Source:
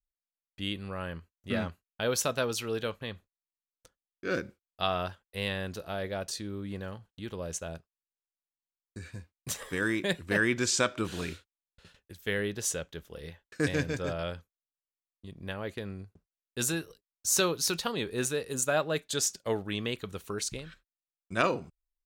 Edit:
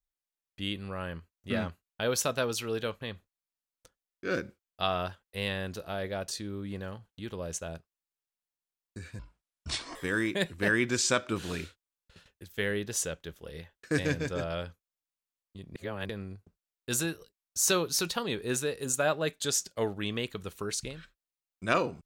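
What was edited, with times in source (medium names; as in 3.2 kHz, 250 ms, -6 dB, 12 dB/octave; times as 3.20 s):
9.19–9.64 s: speed 59%
15.44–15.78 s: reverse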